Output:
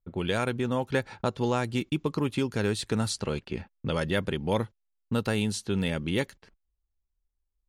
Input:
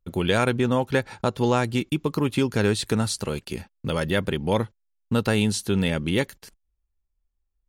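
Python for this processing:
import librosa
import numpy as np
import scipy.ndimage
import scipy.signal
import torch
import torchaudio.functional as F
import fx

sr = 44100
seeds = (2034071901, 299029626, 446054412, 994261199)

y = fx.env_lowpass(x, sr, base_hz=1200.0, full_db=-19.0)
y = fx.rider(y, sr, range_db=3, speed_s=0.5)
y = y * 10.0 ** (-4.5 / 20.0)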